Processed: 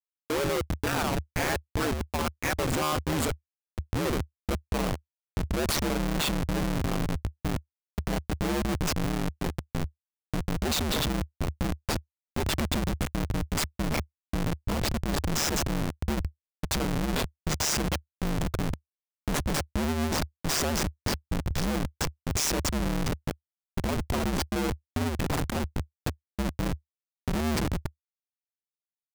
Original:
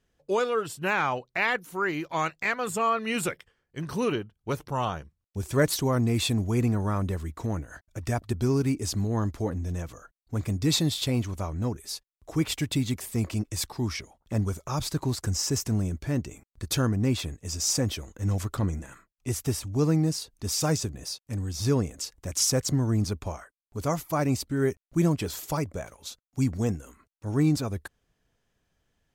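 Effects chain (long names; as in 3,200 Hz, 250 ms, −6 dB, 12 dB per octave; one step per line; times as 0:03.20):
high-shelf EQ 3,300 Hz +5 dB
comparator with hysteresis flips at −26.5 dBFS
ring modulation 75 Hz
level +4 dB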